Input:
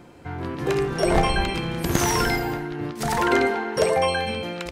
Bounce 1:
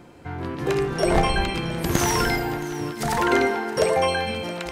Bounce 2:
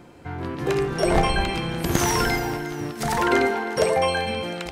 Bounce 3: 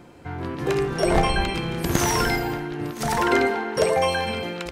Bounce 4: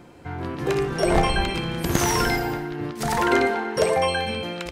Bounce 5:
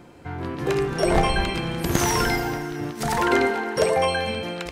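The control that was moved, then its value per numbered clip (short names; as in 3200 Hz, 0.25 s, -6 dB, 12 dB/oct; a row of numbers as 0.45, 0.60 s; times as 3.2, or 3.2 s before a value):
thinning echo, time: 671, 353, 1015, 60, 222 ms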